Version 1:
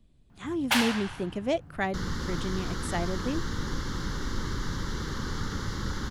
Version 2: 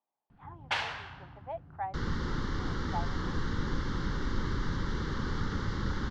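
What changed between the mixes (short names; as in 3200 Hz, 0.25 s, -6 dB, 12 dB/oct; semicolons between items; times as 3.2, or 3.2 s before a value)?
speech: add ladder band-pass 890 Hz, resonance 80%; first sound -4.0 dB; master: add air absorption 160 m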